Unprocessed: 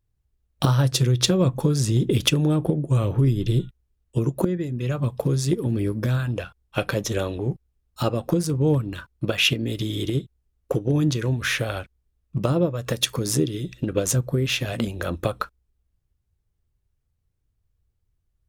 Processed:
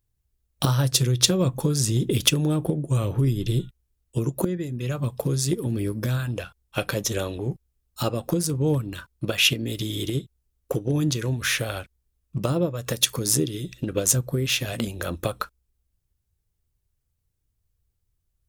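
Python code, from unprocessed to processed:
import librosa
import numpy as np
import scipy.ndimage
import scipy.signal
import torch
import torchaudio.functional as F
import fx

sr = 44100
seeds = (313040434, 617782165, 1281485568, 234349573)

y = fx.high_shelf(x, sr, hz=4700.0, db=10.0)
y = F.gain(torch.from_numpy(y), -2.5).numpy()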